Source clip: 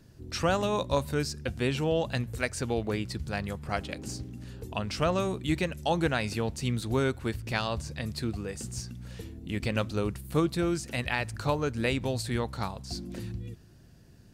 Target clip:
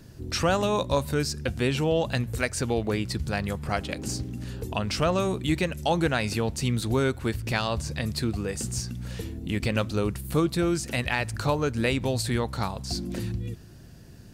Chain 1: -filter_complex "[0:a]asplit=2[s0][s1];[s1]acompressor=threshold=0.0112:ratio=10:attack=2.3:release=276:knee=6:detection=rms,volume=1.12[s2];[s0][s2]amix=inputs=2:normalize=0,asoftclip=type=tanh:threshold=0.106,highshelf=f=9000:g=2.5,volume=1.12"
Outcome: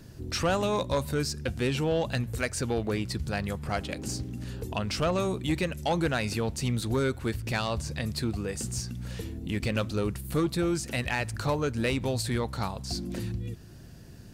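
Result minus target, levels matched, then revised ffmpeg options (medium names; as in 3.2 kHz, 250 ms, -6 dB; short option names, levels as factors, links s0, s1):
saturation: distortion +15 dB; compression: peak gain reduction +7 dB
-filter_complex "[0:a]asplit=2[s0][s1];[s1]acompressor=threshold=0.0266:ratio=10:attack=2.3:release=276:knee=6:detection=rms,volume=1.12[s2];[s0][s2]amix=inputs=2:normalize=0,asoftclip=type=tanh:threshold=0.355,highshelf=f=9000:g=2.5,volume=1.12"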